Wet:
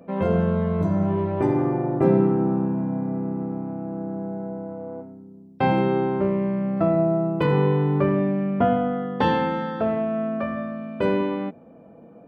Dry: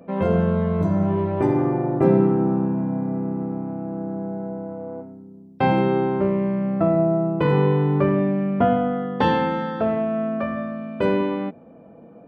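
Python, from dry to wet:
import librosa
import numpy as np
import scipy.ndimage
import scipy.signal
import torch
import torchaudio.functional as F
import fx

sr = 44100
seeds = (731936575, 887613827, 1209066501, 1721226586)

y = fx.high_shelf(x, sr, hz=4100.0, db=9.5, at=(6.77, 7.46))
y = y * 10.0 ** (-1.5 / 20.0)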